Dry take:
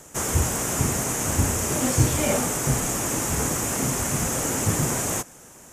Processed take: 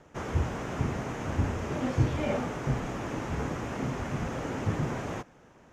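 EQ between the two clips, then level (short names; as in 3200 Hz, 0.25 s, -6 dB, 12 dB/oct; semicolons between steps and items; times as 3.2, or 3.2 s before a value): air absorption 270 m; -5.0 dB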